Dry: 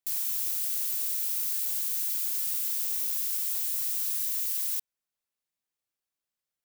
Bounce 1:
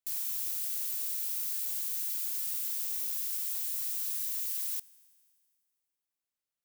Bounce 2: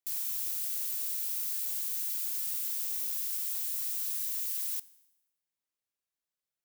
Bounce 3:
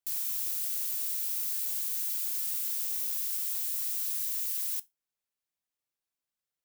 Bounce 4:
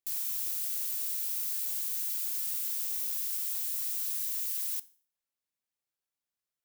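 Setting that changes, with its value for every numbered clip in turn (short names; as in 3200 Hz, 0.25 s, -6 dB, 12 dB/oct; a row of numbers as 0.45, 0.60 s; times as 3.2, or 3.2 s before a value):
resonator, decay: 2.1, 0.97, 0.19, 0.45 s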